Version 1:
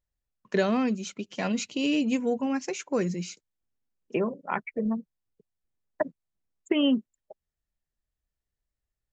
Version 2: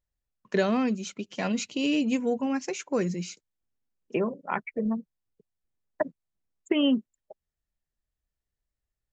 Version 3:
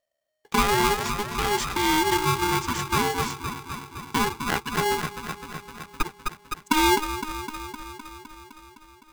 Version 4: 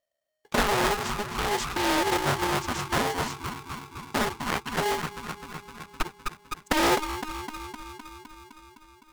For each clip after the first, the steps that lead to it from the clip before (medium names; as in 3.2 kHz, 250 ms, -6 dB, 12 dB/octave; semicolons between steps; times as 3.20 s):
no audible change
feedback echo behind a band-pass 256 ms, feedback 70%, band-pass 770 Hz, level -4 dB; polarity switched at an audio rate 620 Hz; trim +3 dB
loudspeaker Doppler distortion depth 0.87 ms; trim -2.5 dB